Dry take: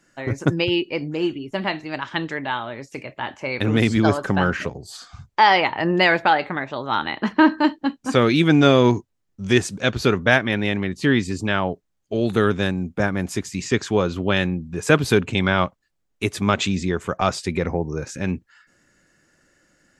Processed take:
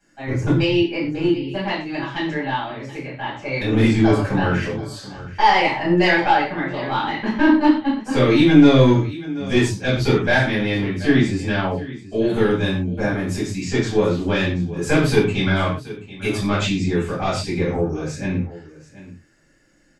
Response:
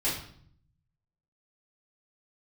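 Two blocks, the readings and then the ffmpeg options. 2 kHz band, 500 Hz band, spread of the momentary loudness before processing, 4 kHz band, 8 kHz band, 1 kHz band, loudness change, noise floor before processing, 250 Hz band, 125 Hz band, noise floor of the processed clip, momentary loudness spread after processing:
-0.5 dB, +1.0 dB, 12 LU, -0.5 dB, -1.5 dB, 0.0 dB, +1.5 dB, -71 dBFS, +3.5 dB, +3.0 dB, -49 dBFS, 12 LU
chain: -filter_complex "[0:a]aecho=1:1:731:0.133,aeval=exprs='(tanh(2*val(0)+0.25)-tanh(0.25))/2':c=same[s0];[1:a]atrim=start_sample=2205,atrim=end_sample=6174[s1];[s0][s1]afir=irnorm=-1:irlink=0,volume=0.447"

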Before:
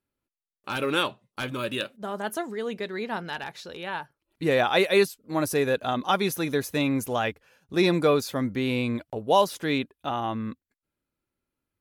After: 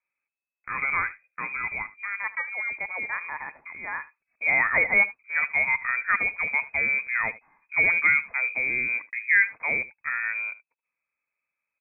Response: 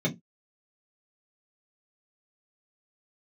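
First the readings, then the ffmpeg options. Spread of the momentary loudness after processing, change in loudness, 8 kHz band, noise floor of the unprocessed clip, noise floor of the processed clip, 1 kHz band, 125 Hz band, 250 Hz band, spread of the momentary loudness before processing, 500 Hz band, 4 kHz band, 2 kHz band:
14 LU, +2.5 dB, under -40 dB, under -85 dBFS, under -85 dBFS, -5.0 dB, -16.5 dB, -20.0 dB, 12 LU, -16.0 dB, under -40 dB, +10.5 dB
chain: -af "aecho=1:1:76:0.126,lowpass=f=2200:t=q:w=0.5098,lowpass=f=2200:t=q:w=0.6013,lowpass=f=2200:t=q:w=0.9,lowpass=f=2200:t=q:w=2.563,afreqshift=-2600"

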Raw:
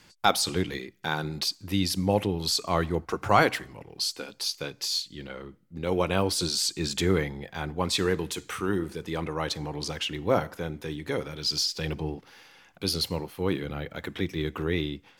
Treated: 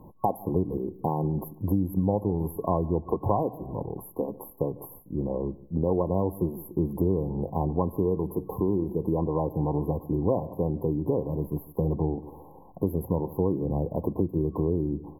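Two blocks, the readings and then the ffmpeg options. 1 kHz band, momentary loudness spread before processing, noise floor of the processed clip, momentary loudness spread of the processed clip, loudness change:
-2.5 dB, 10 LU, -49 dBFS, 6 LU, 0.0 dB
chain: -filter_complex "[0:a]tiltshelf=f=1300:g=5,asplit=2[s0][s1];[s1]adelay=148,lowpass=f=810:p=1,volume=0.0841,asplit=2[s2][s3];[s3]adelay=148,lowpass=f=810:p=1,volume=0.36,asplit=2[s4][s5];[s5]adelay=148,lowpass=f=810:p=1,volume=0.36[s6];[s0][s2][s4][s6]amix=inputs=4:normalize=0,acompressor=threshold=0.0282:ratio=5,afftfilt=real='re*(1-between(b*sr/4096,1100,11000))':imag='im*(1-between(b*sr/4096,1100,11000))':win_size=4096:overlap=0.75,volume=2.66"

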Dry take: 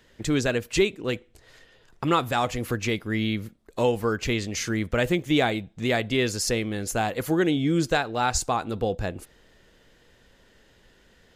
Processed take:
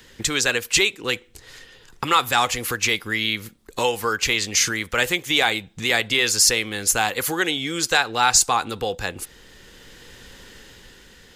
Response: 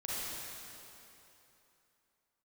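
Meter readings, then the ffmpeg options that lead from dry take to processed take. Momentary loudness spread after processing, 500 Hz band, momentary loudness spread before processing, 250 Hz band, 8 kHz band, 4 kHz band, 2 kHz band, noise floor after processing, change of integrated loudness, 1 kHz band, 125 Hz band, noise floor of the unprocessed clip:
11 LU, -1.5 dB, 7 LU, -5.5 dB, +12.5 dB, +10.5 dB, +8.5 dB, -51 dBFS, +5.5 dB, +5.0 dB, -6.0 dB, -59 dBFS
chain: -filter_complex "[0:a]highshelf=f=2900:g=7.5,acrossover=split=540|1200[s0][s1][s2];[s0]acompressor=threshold=0.0126:ratio=12[s3];[s3][s1][s2]amix=inputs=3:normalize=0,apsyclip=5.01,dynaudnorm=f=190:g=9:m=1.78,equalizer=f=640:w=6.8:g=-11,volume=0.501"

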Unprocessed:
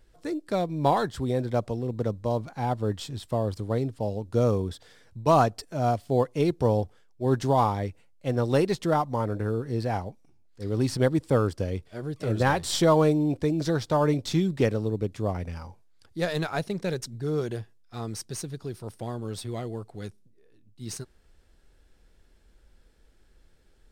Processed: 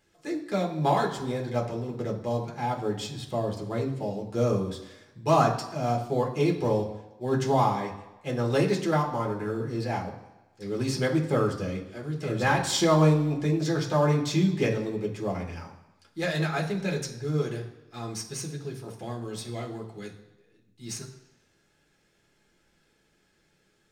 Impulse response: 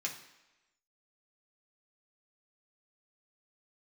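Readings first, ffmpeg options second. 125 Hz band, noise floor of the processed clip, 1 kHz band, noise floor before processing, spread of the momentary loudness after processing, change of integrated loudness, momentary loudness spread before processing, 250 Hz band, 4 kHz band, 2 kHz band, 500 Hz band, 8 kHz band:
-0.5 dB, -68 dBFS, -0.5 dB, -60 dBFS, 15 LU, -0.5 dB, 15 LU, -0.5 dB, +1.5 dB, +2.5 dB, -1.5 dB, +2.0 dB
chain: -filter_complex "[1:a]atrim=start_sample=2205[s0];[0:a][s0]afir=irnorm=-1:irlink=0"

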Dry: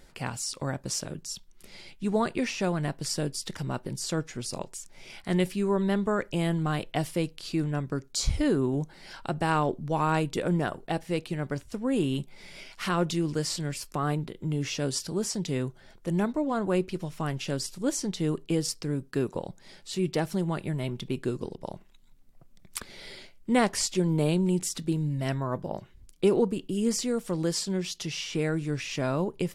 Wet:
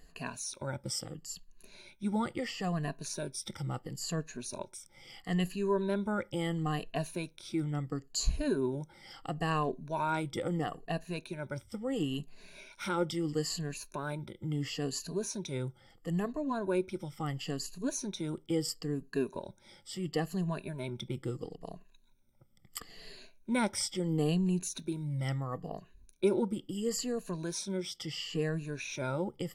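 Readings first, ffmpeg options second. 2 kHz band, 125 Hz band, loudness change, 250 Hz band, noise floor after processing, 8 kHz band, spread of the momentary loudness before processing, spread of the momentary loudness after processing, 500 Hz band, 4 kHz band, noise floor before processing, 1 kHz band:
-5.5 dB, -6.0 dB, -6.0 dB, -6.0 dB, -62 dBFS, -5.5 dB, 13 LU, 13 LU, -5.5 dB, -5.0 dB, -54 dBFS, -5.5 dB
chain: -af "afftfilt=real='re*pow(10,16/40*sin(2*PI*(1.5*log(max(b,1)*sr/1024/100)/log(2)-(-0.74)*(pts-256)/sr)))':imag='im*pow(10,16/40*sin(2*PI*(1.5*log(max(b,1)*sr/1024/100)/log(2)-(-0.74)*(pts-256)/sr)))':win_size=1024:overlap=0.75,volume=0.376"

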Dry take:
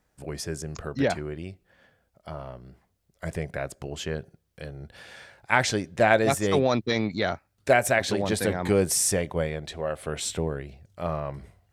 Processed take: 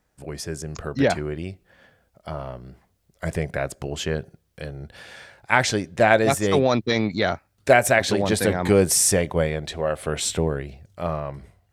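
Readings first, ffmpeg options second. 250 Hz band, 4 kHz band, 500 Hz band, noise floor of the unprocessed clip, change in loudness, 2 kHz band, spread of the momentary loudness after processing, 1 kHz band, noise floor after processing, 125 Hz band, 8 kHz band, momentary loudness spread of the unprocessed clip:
+4.0 dB, +4.5 dB, +4.0 dB, -72 dBFS, +4.0 dB, +4.0 dB, 19 LU, +3.5 dB, -68 dBFS, +4.5 dB, +5.0 dB, 20 LU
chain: -af "dynaudnorm=f=100:g=17:m=1.68,volume=1.12"

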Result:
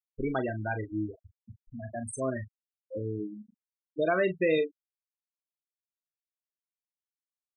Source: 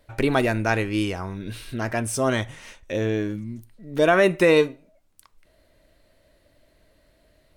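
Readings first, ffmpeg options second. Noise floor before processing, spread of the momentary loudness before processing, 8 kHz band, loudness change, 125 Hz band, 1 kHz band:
-62 dBFS, 16 LU, -12.0 dB, -9.0 dB, -10.0 dB, -10.5 dB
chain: -filter_complex "[0:a]highshelf=f=5500:g=10.5,afftfilt=real='re*gte(hypot(re,im),0.251)':imag='im*gte(hypot(re,im),0.251)':win_size=1024:overlap=0.75,asplit=2[s0][s1];[s1]adelay=38,volume=0.282[s2];[s0][s2]amix=inputs=2:normalize=0,volume=0.355"

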